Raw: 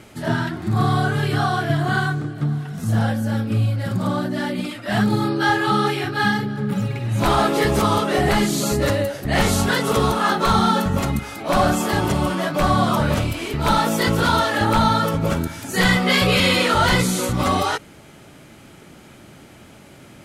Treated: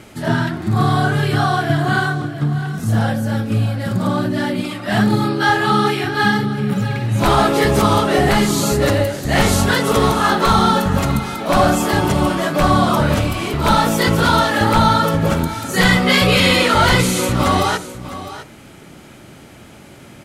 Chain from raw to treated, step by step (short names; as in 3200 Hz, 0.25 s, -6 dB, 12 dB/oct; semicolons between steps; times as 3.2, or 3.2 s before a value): echo 0.656 s -14 dB; on a send at -16 dB: reverb RT60 0.40 s, pre-delay 46 ms; on the sum: gain +3.5 dB